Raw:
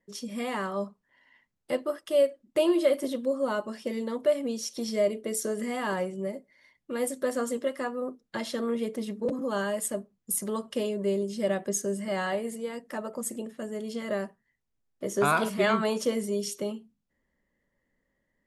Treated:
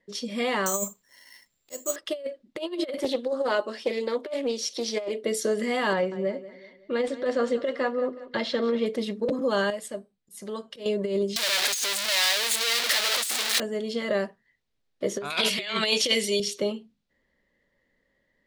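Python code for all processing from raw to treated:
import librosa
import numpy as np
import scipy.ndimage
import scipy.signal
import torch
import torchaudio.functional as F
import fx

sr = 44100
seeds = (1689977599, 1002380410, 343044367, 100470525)

y = fx.chain(x, sr, fx.auto_swell(attack_ms=456.0),
    fx.resample_bad(factor=6, down='none', up='zero_stuff'), at=(0.66, 1.96))
y = fx.chain(y, sr, fx.highpass(hz=260.0, slope=24),
    fx.doppler_dist(depth_ms=0.19), at=(2.98, 5.24))
y = fx.chain(y, sr, fx.median_filter(points=3),
    fx.air_absorb(metres=93.0),
    fx.echo_feedback(ms=186, feedback_pct=43, wet_db=-16), at=(5.93, 8.86))
y = fx.chain(y, sr, fx.auto_swell(attack_ms=131.0),
    fx.comb_fb(f0_hz=780.0, decay_s=0.33, harmonics='all', damping=0.0, mix_pct=60), at=(9.7, 10.86))
y = fx.chain(y, sr, fx.clip_1bit(),
    fx.highpass(hz=730.0, slope=6),
    fx.tilt_eq(slope=4.0), at=(11.36, 13.6))
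y = fx.chain(y, sr, fx.highpass(hz=250.0, slope=6),
    fx.high_shelf_res(hz=1800.0, db=10.5, q=1.5), at=(15.3, 16.4))
y = fx.high_shelf(y, sr, hz=9500.0, db=-10.5)
y = fx.over_compress(y, sr, threshold_db=-28.0, ratio=-0.5)
y = fx.graphic_eq(y, sr, hz=(500, 2000, 4000), db=(5, 4, 10))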